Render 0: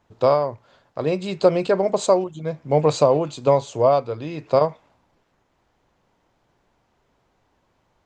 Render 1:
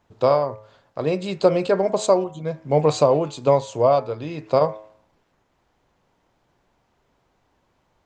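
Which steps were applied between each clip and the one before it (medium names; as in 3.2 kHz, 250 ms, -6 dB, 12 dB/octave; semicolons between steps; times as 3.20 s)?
de-hum 107.3 Hz, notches 19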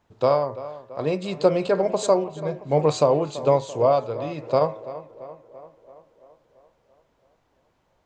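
tape echo 337 ms, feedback 64%, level -14 dB, low-pass 2.5 kHz; trim -2 dB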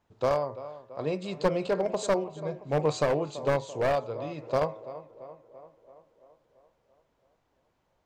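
one-sided wavefolder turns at -14.5 dBFS; trim -6 dB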